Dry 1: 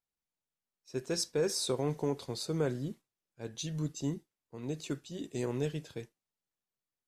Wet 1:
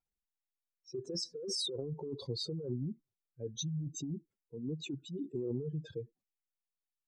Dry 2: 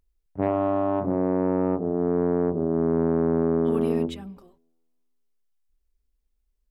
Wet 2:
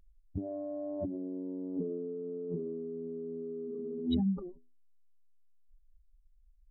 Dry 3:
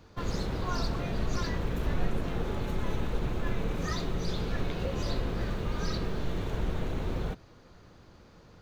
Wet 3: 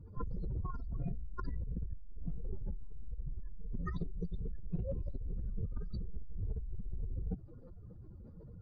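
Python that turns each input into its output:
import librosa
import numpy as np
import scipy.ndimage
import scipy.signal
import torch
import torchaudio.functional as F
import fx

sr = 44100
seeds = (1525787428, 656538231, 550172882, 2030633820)

y = fx.spec_expand(x, sr, power=2.7)
y = fx.over_compress(y, sr, threshold_db=-36.0, ratio=-1.0)
y = y * 10.0 ** (-1.0 / 20.0)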